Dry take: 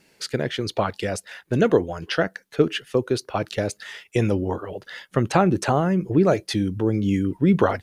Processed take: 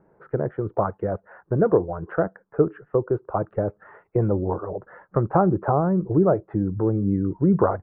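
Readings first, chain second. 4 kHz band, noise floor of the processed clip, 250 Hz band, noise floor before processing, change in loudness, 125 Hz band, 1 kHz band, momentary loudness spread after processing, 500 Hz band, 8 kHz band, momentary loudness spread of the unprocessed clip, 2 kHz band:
under -40 dB, -66 dBFS, -1.5 dB, -64 dBFS, -0.5 dB, 0.0 dB, 0.0 dB, 9 LU, 0.0 dB, under -40 dB, 10 LU, -10.0 dB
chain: steep low-pass 1.3 kHz 36 dB/octave; peaking EQ 250 Hz -13.5 dB 0.2 oct; in parallel at -1 dB: compression, threshold -32 dBFS, peak gain reduction 18 dB; on the sum: trim -1 dB

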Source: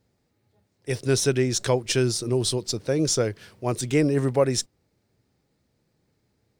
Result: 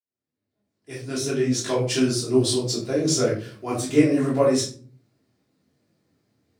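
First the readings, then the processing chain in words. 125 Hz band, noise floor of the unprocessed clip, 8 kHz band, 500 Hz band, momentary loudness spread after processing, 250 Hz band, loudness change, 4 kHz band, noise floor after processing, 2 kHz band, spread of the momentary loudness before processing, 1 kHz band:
-2.0 dB, -72 dBFS, -0.5 dB, +1.0 dB, 11 LU, +4.0 dB, +1.5 dB, +0.5 dB, under -85 dBFS, -1.0 dB, 8 LU, +1.0 dB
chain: fade-in on the opening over 2.10 s; high-pass 130 Hz 12 dB/octave; simulated room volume 290 m³, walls furnished, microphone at 3.1 m; detune thickener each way 41 cents

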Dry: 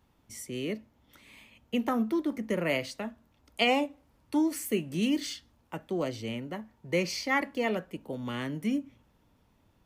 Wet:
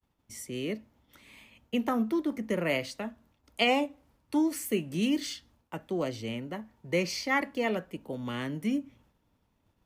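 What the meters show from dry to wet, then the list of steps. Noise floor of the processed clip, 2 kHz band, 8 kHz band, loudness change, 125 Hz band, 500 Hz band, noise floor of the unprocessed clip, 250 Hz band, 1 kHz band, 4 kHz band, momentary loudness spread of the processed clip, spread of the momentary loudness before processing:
-74 dBFS, 0.0 dB, 0.0 dB, 0.0 dB, 0.0 dB, 0.0 dB, -68 dBFS, 0.0 dB, 0.0 dB, 0.0 dB, 13 LU, 13 LU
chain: expander -60 dBFS

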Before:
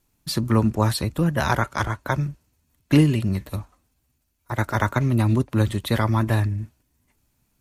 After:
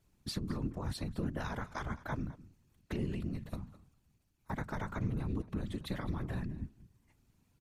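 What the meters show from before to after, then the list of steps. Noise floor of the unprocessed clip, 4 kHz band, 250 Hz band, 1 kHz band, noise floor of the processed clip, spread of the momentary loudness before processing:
-71 dBFS, -15.5 dB, -16.0 dB, -17.5 dB, -74 dBFS, 10 LU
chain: peak limiter -14 dBFS, peak gain reduction 9 dB; bass shelf 130 Hz +7 dB; compression 3:1, threshold -33 dBFS, peak gain reduction 13.5 dB; treble shelf 9.9 kHz -11.5 dB; hum notches 50/100 Hz; delay 209 ms -18.5 dB; whisper effect; trim -4.5 dB

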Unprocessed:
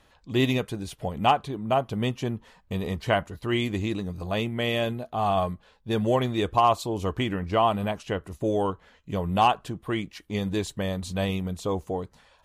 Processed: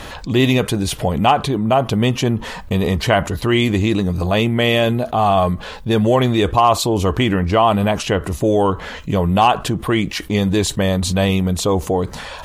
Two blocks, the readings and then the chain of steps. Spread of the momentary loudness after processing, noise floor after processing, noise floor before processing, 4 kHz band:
6 LU, -34 dBFS, -61 dBFS, +11.0 dB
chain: level flattener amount 50%; trim +6 dB

